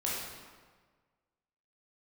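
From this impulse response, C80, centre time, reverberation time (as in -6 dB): 1.5 dB, 92 ms, 1.5 s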